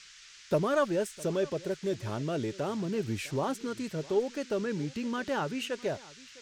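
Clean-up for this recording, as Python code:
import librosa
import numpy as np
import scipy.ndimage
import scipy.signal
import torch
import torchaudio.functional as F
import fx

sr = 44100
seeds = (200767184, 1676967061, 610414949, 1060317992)

y = fx.noise_reduce(x, sr, print_start_s=0.01, print_end_s=0.51, reduce_db=25.0)
y = fx.fix_echo_inverse(y, sr, delay_ms=656, level_db=-21.0)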